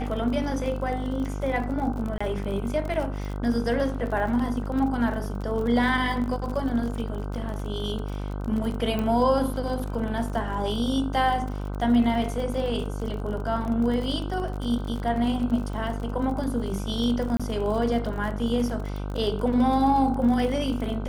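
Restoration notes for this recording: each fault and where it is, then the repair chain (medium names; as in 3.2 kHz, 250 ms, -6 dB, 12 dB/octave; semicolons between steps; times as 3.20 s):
buzz 50 Hz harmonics 31 -31 dBFS
crackle 40 per s -32 dBFS
2.18–2.21 s: dropout 25 ms
8.99 s: pop -16 dBFS
17.37–17.40 s: dropout 26 ms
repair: de-click; de-hum 50 Hz, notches 31; interpolate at 2.18 s, 25 ms; interpolate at 17.37 s, 26 ms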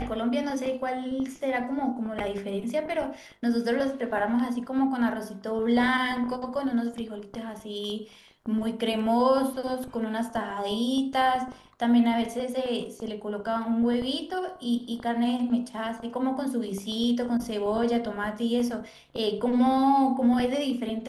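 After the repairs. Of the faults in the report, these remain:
8.99 s: pop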